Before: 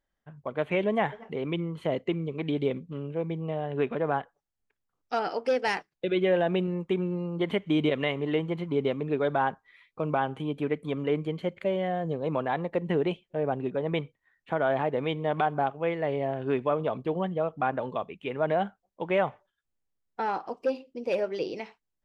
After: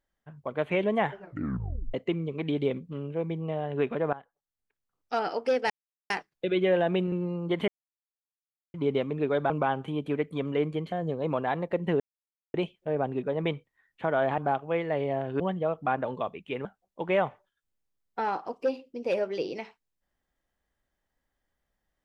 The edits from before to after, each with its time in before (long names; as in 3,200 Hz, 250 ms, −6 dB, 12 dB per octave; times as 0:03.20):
0:01.10: tape stop 0.84 s
0:04.13–0:05.19: fade in, from −17.5 dB
0:05.70: splice in silence 0.40 s
0:06.72–0:07.02: remove
0:07.58–0:08.64: silence
0:09.40–0:10.02: remove
0:11.44–0:11.94: remove
0:13.02: splice in silence 0.54 s
0:14.86–0:15.50: remove
0:16.52–0:17.15: remove
0:18.40–0:18.66: remove